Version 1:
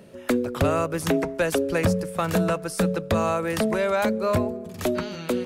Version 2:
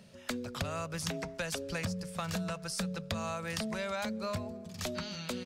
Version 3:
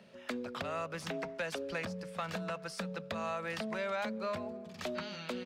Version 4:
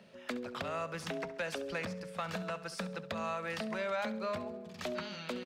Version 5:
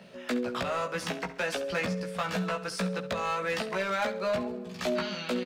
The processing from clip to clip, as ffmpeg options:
ffmpeg -i in.wav -af "firequalizer=gain_entry='entry(210,0);entry(300,-13);entry(630,-4);entry(4900,8);entry(11000,-3)':delay=0.05:min_phase=1,acompressor=threshold=-26dB:ratio=6,volume=-6dB" out.wav
ffmpeg -i in.wav -filter_complex "[0:a]asoftclip=type=tanh:threshold=-27.5dB,acrossover=split=210 3600:gain=0.178 1 0.224[link_01][link_02][link_03];[link_01][link_02][link_03]amix=inputs=3:normalize=0,volume=2dB" out.wav
ffmpeg -i in.wav -af "aecho=1:1:68|136|204|272:0.178|0.0782|0.0344|0.0151" out.wav
ffmpeg -i in.wav -filter_complex "[0:a]asoftclip=type=hard:threshold=-31dB,asplit=2[link_01][link_02];[link_02]adelay=16,volume=-3dB[link_03];[link_01][link_03]amix=inputs=2:normalize=0,volume=6dB" out.wav

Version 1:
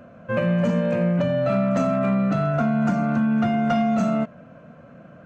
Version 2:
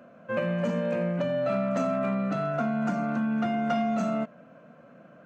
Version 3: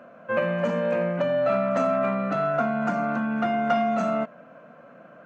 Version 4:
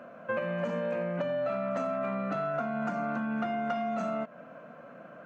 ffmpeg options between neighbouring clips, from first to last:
ffmpeg -i in.wav -af "highpass=200,volume=-4.5dB" out.wav
ffmpeg -i in.wav -af "equalizer=frequency=1100:width=0.35:gain=9,volume=-2.5dB" out.wav
ffmpeg -i in.wav -af "acompressor=threshold=-29dB:ratio=6" out.wav

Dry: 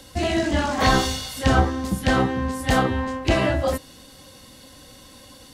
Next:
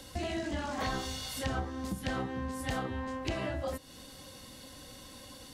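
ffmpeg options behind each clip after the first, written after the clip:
ffmpeg -i in.wav -af "acompressor=threshold=-32dB:ratio=3,volume=-3.5dB" out.wav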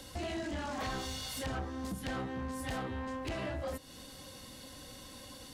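ffmpeg -i in.wav -af "asoftclip=type=tanh:threshold=-32dB" out.wav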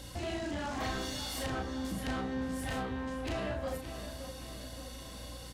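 ffmpeg -i in.wav -filter_complex "[0:a]aeval=exprs='val(0)+0.00282*(sin(2*PI*60*n/s)+sin(2*PI*2*60*n/s)/2+sin(2*PI*3*60*n/s)/3+sin(2*PI*4*60*n/s)/4+sin(2*PI*5*60*n/s)/5)':channel_layout=same,asplit=2[link_01][link_02];[link_02]adelay=35,volume=-4.5dB[link_03];[link_01][link_03]amix=inputs=2:normalize=0,asplit=2[link_04][link_05];[link_05]adelay=569,lowpass=frequency=4300:poles=1,volume=-9.5dB,asplit=2[link_06][link_07];[link_07]adelay=569,lowpass=frequency=4300:poles=1,volume=0.53,asplit=2[link_08][link_09];[link_09]adelay=569,lowpass=frequency=4300:poles=1,volume=0.53,asplit=2[link_10][link_11];[link_11]adelay=569,lowpass=frequency=4300:poles=1,volume=0.53,asplit=2[link_12][link_13];[link_13]adelay=569,lowpass=frequency=4300:poles=1,volume=0.53,asplit=2[link_14][link_15];[link_15]adelay=569,lowpass=frequency=4300:poles=1,volume=0.53[link_16];[link_06][link_08][link_10][link_12][link_14][link_16]amix=inputs=6:normalize=0[link_17];[link_04][link_17]amix=inputs=2:normalize=0" out.wav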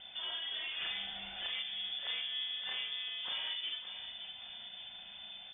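ffmpeg -i in.wav -af "lowpass=frequency=3100:width_type=q:width=0.5098,lowpass=frequency=3100:width_type=q:width=0.6013,lowpass=frequency=3100:width_type=q:width=0.9,lowpass=frequency=3100:width_type=q:width=2.563,afreqshift=-3600,volume=-3.5dB" out.wav

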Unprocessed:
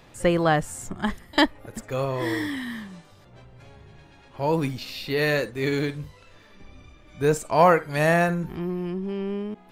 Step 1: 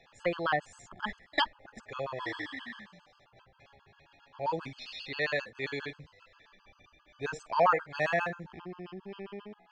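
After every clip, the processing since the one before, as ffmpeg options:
ffmpeg -i in.wav -filter_complex "[0:a]lowpass=frequency=8000:width=0.5412,lowpass=frequency=8000:width=1.3066,acrossover=split=570 5500:gain=0.251 1 0.0891[link_01][link_02][link_03];[link_01][link_02][link_03]amix=inputs=3:normalize=0,afftfilt=real='re*gt(sin(2*PI*7.5*pts/sr)*(1-2*mod(floor(b*sr/1024/850),2)),0)':imag='im*gt(sin(2*PI*7.5*pts/sr)*(1-2*mod(floor(b*sr/1024/850),2)),0)':win_size=1024:overlap=0.75,volume=-2.5dB" out.wav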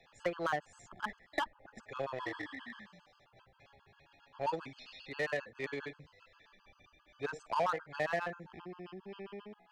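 ffmpeg -i in.wav -filter_complex "[0:a]acrossover=split=230|2000[link_01][link_02][link_03];[link_01]acompressor=threshold=-51dB:ratio=4[link_04];[link_02]acompressor=threshold=-31dB:ratio=4[link_05];[link_03]acompressor=threshold=-52dB:ratio=4[link_06];[link_04][link_05][link_06]amix=inputs=3:normalize=0,asplit=2[link_07][link_08];[link_08]acrusher=bits=4:mix=0:aa=0.5,volume=-7.5dB[link_09];[link_07][link_09]amix=inputs=2:normalize=0,volume=-3dB" out.wav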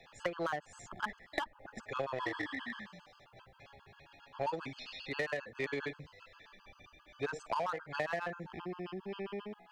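ffmpeg -i in.wav -af "acompressor=threshold=-37dB:ratio=10,volume=5.5dB" out.wav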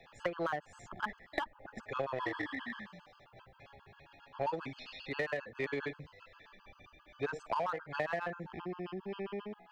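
ffmpeg -i in.wav -af "equalizer=frequency=8300:width_type=o:width=2:gain=-7.5,volume=1dB" out.wav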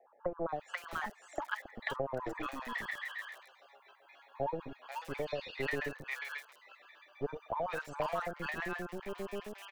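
ffmpeg -i in.wav -filter_complex "[0:a]bandreject=frequency=5100:width=13,acrossover=split=460|3000[link_01][link_02][link_03];[link_01]acrusher=bits=5:dc=4:mix=0:aa=0.000001[link_04];[link_04][link_02][link_03]amix=inputs=3:normalize=0,acrossover=split=990|4600[link_05][link_06][link_07];[link_06]adelay=490[link_08];[link_07]adelay=520[link_09];[link_05][link_08][link_09]amix=inputs=3:normalize=0,volume=2.5dB" out.wav

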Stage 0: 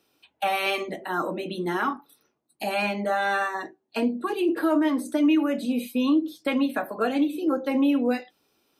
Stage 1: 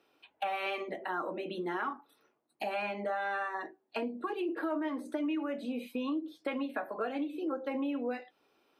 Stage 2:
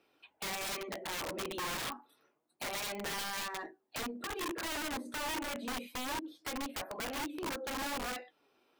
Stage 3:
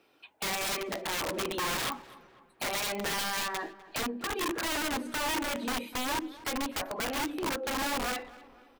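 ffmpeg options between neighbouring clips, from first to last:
ffmpeg -i in.wav -af "bass=frequency=250:gain=-11,treble=frequency=4000:gain=-15,acompressor=threshold=-38dB:ratio=2.5,volume=1.5dB" out.wav
ffmpeg -i in.wav -filter_complex "[0:a]asplit=2[link_01][link_02];[link_02]asoftclip=type=hard:threshold=-37dB,volume=-6dB[link_03];[link_01][link_03]amix=inputs=2:normalize=0,flanger=delay=0.4:depth=8.2:regen=71:speed=0.28:shape=sinusoidal,aeval=exprs='(mod(47.3*val(0)+1,2)-1)/47.3':channel_layout=same" out.wav
ffmpeg -i in.wav -filter_complex "[0:a]asplit=2[link_01][link_02];[link_02]adelay=250,lowpass=frequency=2400:poles=1,volume=-18dB,asplit=2[link_03][link_04];[link_04]adelay=250,lowpass=frequency=2400:poles=1,volume=0.52,asplit=2[link_05][link_06];[link_06]adelay=250,lowpass=frequency=2400:poles=1,volume=0.52,asplit=2[link_07][link_08];[link_08]adelay=250,lowpass=frequency=2400:poles=1,volume=0.52[link_09];[link_01][link_03][link_05][link_07][link_09]amix=inputs=5:normalize=0,volume=6dB" out.wav

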